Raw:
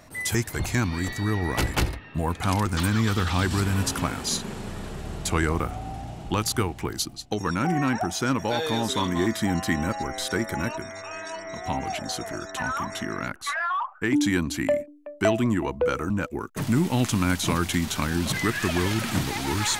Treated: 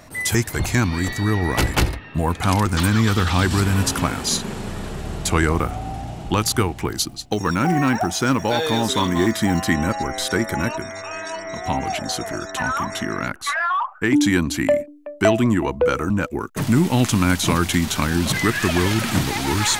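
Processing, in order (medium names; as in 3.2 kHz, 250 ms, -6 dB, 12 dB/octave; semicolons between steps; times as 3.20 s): 7.07–9.64 s: short-mantissa float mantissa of 4-bit; trim +5.5 dB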